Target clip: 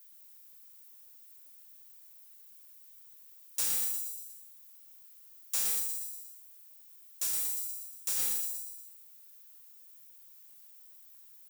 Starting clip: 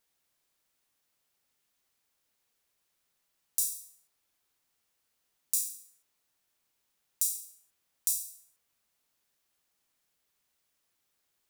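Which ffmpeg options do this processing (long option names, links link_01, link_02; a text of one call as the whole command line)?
ffmpeg -i in.wav -filter_complex "[0:a]acrossover=split=6200[link_01][link_02];[link_02]acompressor=threshold=-40dB:ratio=4:attack=1:release=60[link_03];[link_01][link_03]amix=inputs=2:normalize=0,aemphasis=mode=production:type=bsi,aecho=1:1:119|238|357|476|595|714:0.501|0.261|0.136|0.0705|0.0366|0.0191,asettb=1/sr,asplit=3[link_04][link_05][link_06];[link_04]atrim=end=5.784[link_07];[link_05]atrim=start=5.78:end=8.17,asetpts=PTS-STARTPTS,afade=type=in:duration=0.004:curve=qsin,afade=type=out:start_time=2.386:duration=0.004:curve=qsin,acompressor=threshold=-33dB:ratio=1.5[link_08];[link_06]atrim=start=8.166[link_09];[link_07][link_08]acrossfade=duration=0.004:curve1=hsin:curve2=qsin[link_10];[link_10][link_09]acrossfade=duration=0.004:curve1=qsin:curve2=hsin,asoftclip=type=tanh:threshold=-30dB,highpass=120,volume=3.5dB" out.wav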